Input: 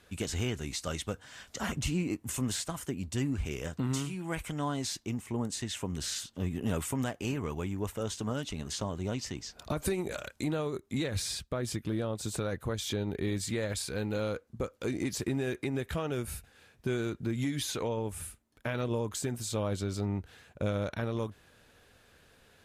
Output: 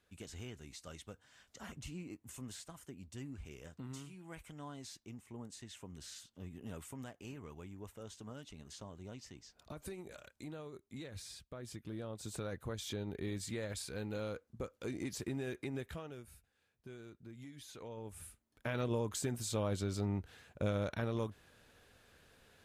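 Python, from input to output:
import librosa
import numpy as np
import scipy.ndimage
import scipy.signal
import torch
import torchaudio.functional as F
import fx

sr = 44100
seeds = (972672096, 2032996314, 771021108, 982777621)

y = fx.gain(x, sr, db=fx.line((11.45, -15.0), (12.45, -8.0), (15.8, -8.0), (16.31, -19.5), (17.6, -19.5), (18.07, -12.0), (18.77, -3.5)))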